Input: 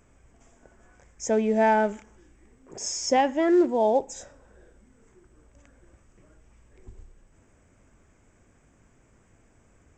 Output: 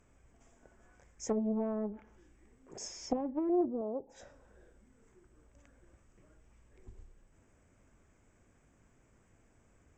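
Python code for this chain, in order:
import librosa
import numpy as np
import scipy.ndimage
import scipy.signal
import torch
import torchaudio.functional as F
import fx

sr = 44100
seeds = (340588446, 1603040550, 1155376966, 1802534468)

y = fx.env_lowpass_down(x, sr, base_hz=360.0, full_db=-20.0)
y = fx.tilt_eq(y, sr, slope=2.0, at=(3.81, 4.21))
y = fx.doppler_dist(y, sr, depth_ms=0.41)
y = y * librosa.db_to_amplitude(-6.5)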